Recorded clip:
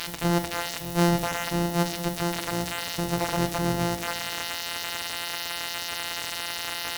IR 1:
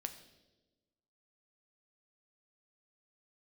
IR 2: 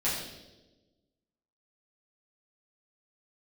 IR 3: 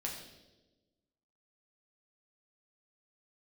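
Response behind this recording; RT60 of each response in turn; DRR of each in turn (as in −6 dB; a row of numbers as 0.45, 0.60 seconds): 1; 1.1, 1.1, 1.1 seconds; 7.0, −10.0, −2.0 decibels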